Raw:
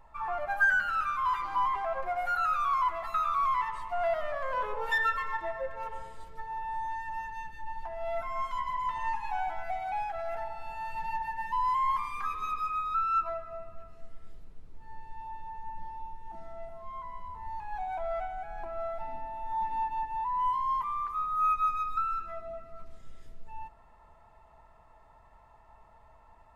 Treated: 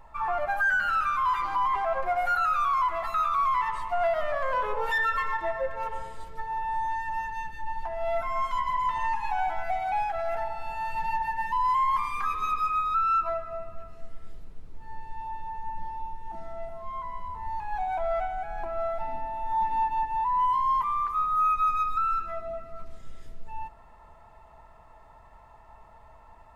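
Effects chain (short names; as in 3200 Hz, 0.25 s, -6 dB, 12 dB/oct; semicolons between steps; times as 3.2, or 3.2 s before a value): limiter -24 dBFS, peak gain reduction 8 dB; gain +5.5 dB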